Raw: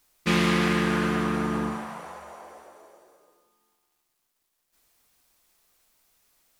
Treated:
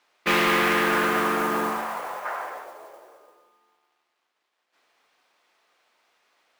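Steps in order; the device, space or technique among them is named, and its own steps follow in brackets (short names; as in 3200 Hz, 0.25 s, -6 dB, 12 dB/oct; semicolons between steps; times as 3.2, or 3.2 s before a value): carbon microphone (BPF 440–2900 Hz; soft clip -23 dBFS, distortion -17 dB; modulation noise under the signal 17 dB); 2.24–2.64 bell 1600 Hz +14.5 dB -> +5 dB 1.3 oct; gain +8.5 dB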